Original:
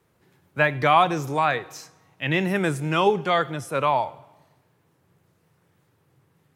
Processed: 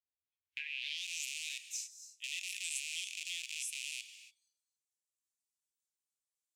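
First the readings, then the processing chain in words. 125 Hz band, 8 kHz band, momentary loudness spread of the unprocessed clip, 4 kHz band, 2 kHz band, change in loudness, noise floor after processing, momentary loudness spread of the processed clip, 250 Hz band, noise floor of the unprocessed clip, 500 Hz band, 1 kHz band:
under -40 dB, +3.5 dB, 13 LU, -6.5 dB, -15.5 dB, -17.0 dB, under -85 dBFS, 8 LU, under -40 dB, -66 dBFS, under -40 dB, under -40 dB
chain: rattling part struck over -36 dBFS, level -13 dBFS; spectral noise reduction 15 dB; band-pass sweep 490 Hz -> 7400 Hz, 0.21–1.07; compressor 6:1, threshold -35 dBFS, peak gain reduction 15 dB; inverse Chebyshev band-stop 160–1400 Hz, stop band 40 dB; high shelf 8600 Hz +5.5 dB; non-linear reverb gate 0.31 s rising, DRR 11 dB; gain +2.5 dB

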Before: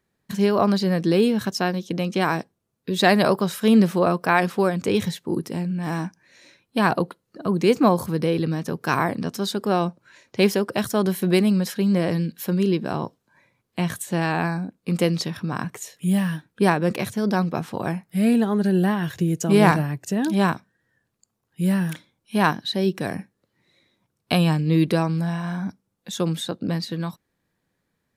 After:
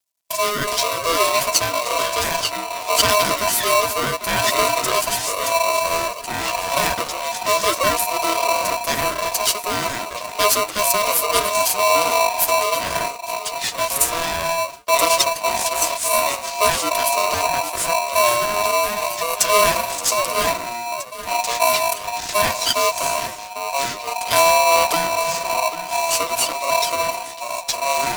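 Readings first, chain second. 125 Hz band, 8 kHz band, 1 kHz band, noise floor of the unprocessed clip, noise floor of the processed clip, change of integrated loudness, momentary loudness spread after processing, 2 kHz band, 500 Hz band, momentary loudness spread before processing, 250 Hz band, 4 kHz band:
-13.5 dB, +18.0 dB, +9.0 dB, -76 dBFS, -32 dBFS, +3.5 dB, 8 LU, +6.0 dB, +3.0 dB, 11 LU, -14.5 dB, +10.5 dB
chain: HPF 140 Hz 24 dB/oct; crackle 340/s -49 dBFS; tone controls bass +14 dB, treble +13 dB; flange 0.33 Hz, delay 5.1 ms, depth 5.2 ms, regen +7%; in parallel at -1 dB: limiter -9.5 dBFS, peak gain reduction 10.5 dB; on the sum: high shelf 2300 Hz +11 dB; on a send: echo with dull and thin repeats by turns 0.797 s, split 1500 Hz, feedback 53%, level -10.5 dB; on the sum: gate -26 dBFS, range -24 dB; echoes that change speed 0.242 s, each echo -6 st, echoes 2, each echo -6 dB; polarity switched at an audio rate 830 Hz; gain -9 dB

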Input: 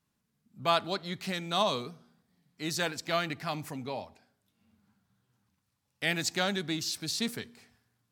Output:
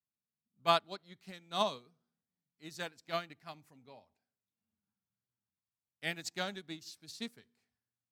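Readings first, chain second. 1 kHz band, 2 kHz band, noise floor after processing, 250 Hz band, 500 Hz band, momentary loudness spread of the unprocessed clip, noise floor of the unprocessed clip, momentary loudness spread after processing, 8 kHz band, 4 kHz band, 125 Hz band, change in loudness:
-4.0 dB, -8.5 dB, under -85 dBFS, -11.0 dB, -5.5 dB, 11 LU, -80 dBFS, 21 LU, -12.5 dB, -7.5 dB, -11.5 dB, -5.5 dB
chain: upward expander 2.5:1, over -38 dBFS

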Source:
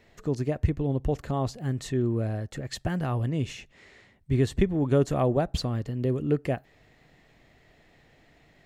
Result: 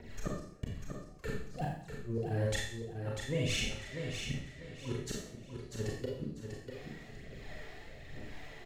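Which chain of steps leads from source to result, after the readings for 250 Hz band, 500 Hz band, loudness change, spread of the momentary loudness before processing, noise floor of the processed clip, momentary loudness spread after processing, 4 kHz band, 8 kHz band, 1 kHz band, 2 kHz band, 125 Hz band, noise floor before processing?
-13.0 dB, -11.5 dB, -11.5 dB, 8 LU, -51 dBFS, 15 LU, 0.0 dB, +0.5 dB, -12.0 dB, -0.5 dB, -11.0 dB, -60 dBFS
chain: limiter -21.5 dBFS, peak gain reduction 10.5 dB; compressor 12:1, threshold -30 dBFS, peak gain reduction 6 dB; phaser 1.1 Hz, delay 2.9 ms, feedback 75%; flipped gate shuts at -26 dBFS, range -33 dB; rotary speaker horn 6 Hz, later 1.2 Hz, at 0.26; on a send: feedback echo 0.644 s, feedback 30%, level -7 dB; on the sum: Schroeder reverb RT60 0.6 s, combs from 28 ms, DRR -2.5 dB; gain +2.5 dB

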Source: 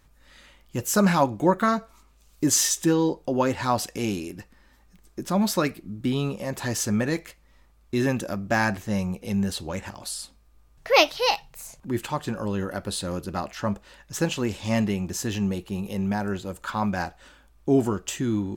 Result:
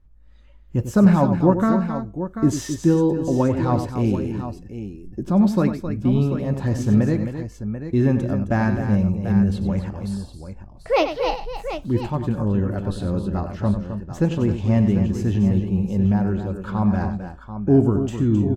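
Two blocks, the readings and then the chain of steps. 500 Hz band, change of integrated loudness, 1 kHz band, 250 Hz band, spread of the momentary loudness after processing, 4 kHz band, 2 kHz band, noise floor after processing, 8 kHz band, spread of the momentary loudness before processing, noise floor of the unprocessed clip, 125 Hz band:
+3.0 dB, +4.5 dB, -1.0 dB, +7.0 dB, 12 LU, -9.0 dB, -5.0 dB, -44 dBFS, under -10 dB, 13 LU, -58 dBFS, +10.0 dB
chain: tilt -4 dB/oct; on a send: tapped delay 95/264/739 ms -10/-9.5/-10.5 dB; on the sum: spectral noise reduction 10 dB; gain -2.5 dB

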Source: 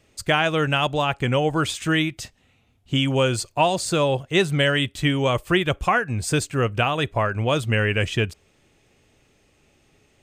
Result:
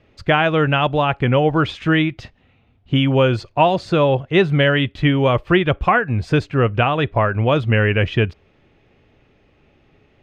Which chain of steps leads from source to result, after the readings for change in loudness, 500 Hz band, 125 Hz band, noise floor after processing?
+4.5 dB, +5.0 dB, +6.0 dB, -57 dBFS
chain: air absorption 300 m; gain +6 dB

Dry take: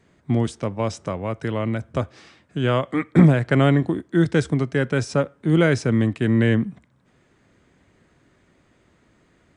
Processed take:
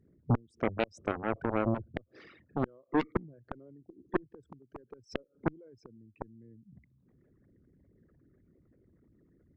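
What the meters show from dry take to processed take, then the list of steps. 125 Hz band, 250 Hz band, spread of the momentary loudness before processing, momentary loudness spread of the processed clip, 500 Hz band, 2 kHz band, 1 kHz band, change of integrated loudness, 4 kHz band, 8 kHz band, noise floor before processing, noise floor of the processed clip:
-18.5 dB, -16.0 dB, 12 LU, 20 LU, -13.5 dB, -15.0 dB, -8.5 dB, -13.5 dB, -17.5 dB, under -20 dB, -61 dBFS, -72 dBFS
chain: formant sharpening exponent 3; flipped gate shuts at -13 dBFS, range -31 dB; added harmonics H 4 -20 dB, 7 -11 dB, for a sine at -12 dBFS; gain -5.5 dB

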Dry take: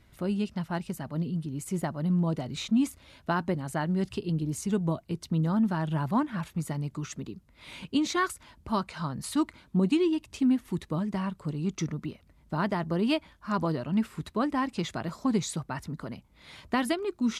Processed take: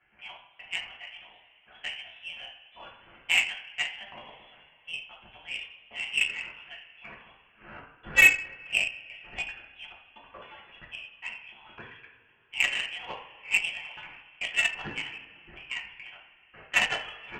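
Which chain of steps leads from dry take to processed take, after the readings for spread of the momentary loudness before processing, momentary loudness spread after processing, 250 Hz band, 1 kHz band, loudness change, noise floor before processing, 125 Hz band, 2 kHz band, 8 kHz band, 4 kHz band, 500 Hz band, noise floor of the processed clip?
11 LU, 22 LU, -27.0 dB, -9.5 dB, +2.5 dB, -61 dBFS, -24.0 dB, +12.5 dB, +0.5 dB, +7.5 dB, -14.5 dB, -61 dBFS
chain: HPF 800 Hz 24 dB/oct; step gate "xxx..xxxx" 127 bpm -60 dB; two-slope reverb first 0.55 s, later 3.3 s, from -18 dB, DRR -5.5 dB; inverted band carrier 3700 Hz; added harmonics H 7 -21 dB, 8 -41 dB, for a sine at -9.5 dBFS; gain +4.5 dB

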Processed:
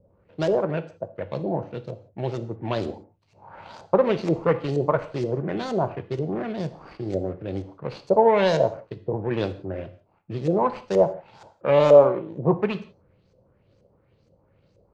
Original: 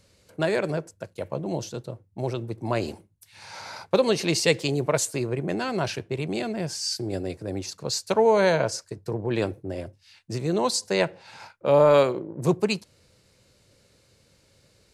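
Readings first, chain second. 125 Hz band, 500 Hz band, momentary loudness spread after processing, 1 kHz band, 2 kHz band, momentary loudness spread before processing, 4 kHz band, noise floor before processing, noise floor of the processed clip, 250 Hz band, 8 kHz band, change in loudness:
+1.0 dB, +2.5 dB, 17 LU, +2.5 dB, -4.5 dB, 16 LU, -9.0 dB, -62 dBFS, -64 dBFS, +1.0 dB, under -20 dB, +1.5 dB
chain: median filter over 25 samples; LFO low-pass saw up 2.1 Hz 480–6900 Hz; non-linear reverb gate 0.2 s falling, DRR 10.5 dB

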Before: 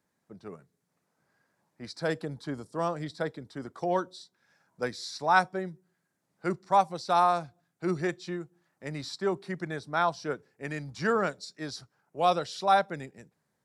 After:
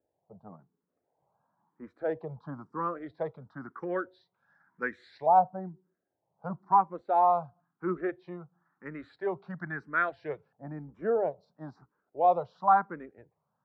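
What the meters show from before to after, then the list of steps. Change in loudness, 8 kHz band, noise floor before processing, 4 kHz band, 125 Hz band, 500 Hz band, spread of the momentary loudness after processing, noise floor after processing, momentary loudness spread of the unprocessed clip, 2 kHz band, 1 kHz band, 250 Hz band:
+0.5 dB, under -30 dB, -79 dBFS, under -20 dB, -5.0 dB, -1.0 dB, 20 LU, -83 dBFS, 19 LU, -3.5 dB, +1.0 dB, -4.0 dB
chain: LFO low-pass saw up 0.19 Hz 710–1900 Hz; endless phaser +0.99 Hz; gain -1.5 dB

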